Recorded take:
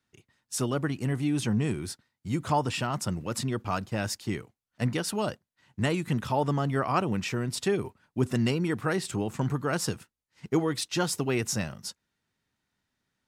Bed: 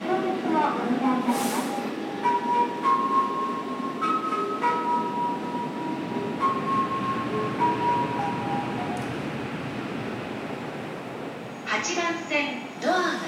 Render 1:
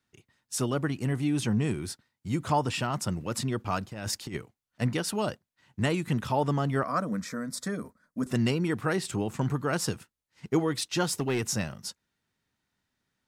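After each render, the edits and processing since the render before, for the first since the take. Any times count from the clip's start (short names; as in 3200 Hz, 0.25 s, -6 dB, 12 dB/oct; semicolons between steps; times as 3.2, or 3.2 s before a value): 3.92–4.37 negative-ratio compressor -33 dBFS, ratio -0.5; 6.83–8.27 fixed phaser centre 560 Hz, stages 8; 11.05–11.45 overloaded stage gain 22.5 dB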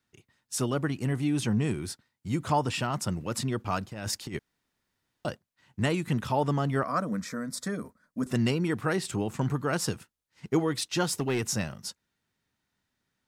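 4.39–5.25 room tone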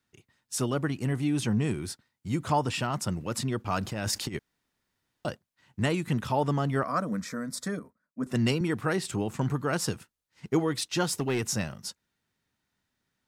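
3.71–4.29 fast leveller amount 50%; 7.79–8.61 three-band expander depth 70%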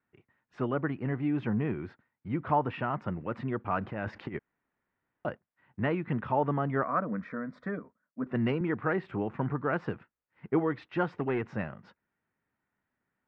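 LPF 2100 Hz 24 dB/oct; low shelf 150 Hz -8 dB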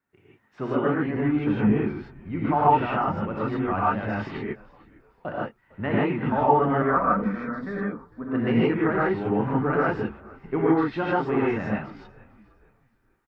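frequency-shifting echo 0.454 s, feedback 38%, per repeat -78 Hz, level -22.5 dB; non-linear reverb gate 0.18 s rising, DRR -7 dB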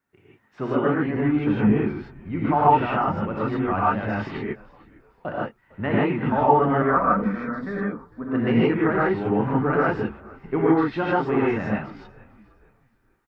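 gain +2 dB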